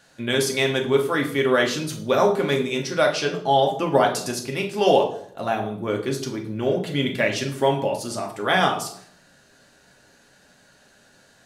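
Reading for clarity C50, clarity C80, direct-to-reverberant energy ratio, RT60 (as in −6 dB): 9.5 dB, 13.5 dB, 0.5 dB, 0.65 s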